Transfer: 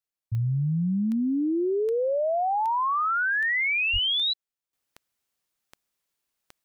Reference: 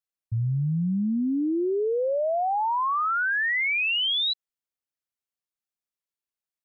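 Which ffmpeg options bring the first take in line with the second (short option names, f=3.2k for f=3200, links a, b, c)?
-filter_complex "[0:a]adeclick=t=4,asplit=3[a][b][c];[a]afade=t=out:st=3.92:d=0.02[d];[b]highpass=f=140:w=0.5412,highpass=f=140:w=1.3066,afade=t=in:st=3.92:d=0.02,afade=t=out:st=4.04:d=0.02[e];[c]afade=t=in:st=4.04:d=0.02[f];[d][e][f]amix=inputs=3:normalize=0,asetnsamples=n=441:p=0,asendcmd='4.73 volume volume -11.5dB',volume=0dB"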